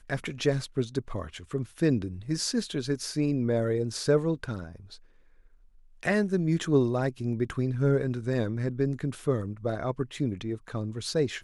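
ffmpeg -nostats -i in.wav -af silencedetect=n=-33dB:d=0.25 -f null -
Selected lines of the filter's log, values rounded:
silence_start: 4.66
silence_end: 6.03 | silence_duration: 1.37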